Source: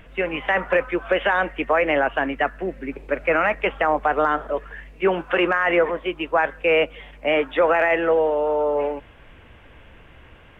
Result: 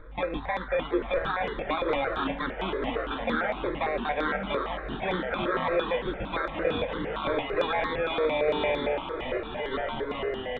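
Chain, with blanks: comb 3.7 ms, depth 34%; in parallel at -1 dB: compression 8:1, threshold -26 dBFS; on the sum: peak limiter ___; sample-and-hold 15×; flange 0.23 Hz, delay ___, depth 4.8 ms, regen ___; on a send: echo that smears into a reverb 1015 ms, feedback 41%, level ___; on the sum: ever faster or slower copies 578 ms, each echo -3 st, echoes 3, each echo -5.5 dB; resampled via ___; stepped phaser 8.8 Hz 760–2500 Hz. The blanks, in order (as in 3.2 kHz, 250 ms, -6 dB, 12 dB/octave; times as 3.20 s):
-12 dBFS, 6.3 ms, +84%, -10.5 dB, 8 kHz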